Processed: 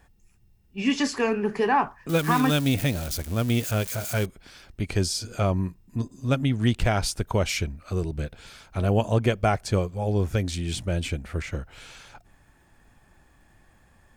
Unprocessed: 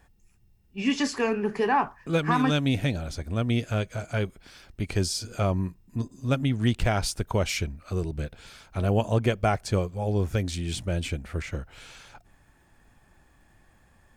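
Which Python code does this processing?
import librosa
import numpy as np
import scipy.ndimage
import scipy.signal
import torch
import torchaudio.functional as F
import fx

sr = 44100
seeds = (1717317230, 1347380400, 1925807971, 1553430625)

y = fx.crossing_spikes(x, sr, level_db=-25.5, at=(2.09, 4.26))
y = y * librosa.db_to_amplitude(1.5)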